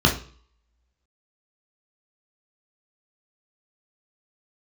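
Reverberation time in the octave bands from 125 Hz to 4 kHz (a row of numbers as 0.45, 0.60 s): 0.55, 0.45, 0.45, 0.50, 0.45, 0.45 s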